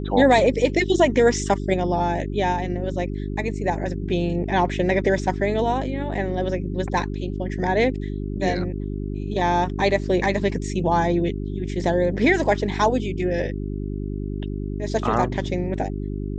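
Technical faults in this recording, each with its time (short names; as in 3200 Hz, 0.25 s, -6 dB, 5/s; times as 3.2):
hum 50 Hz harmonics 8 -28 dBFS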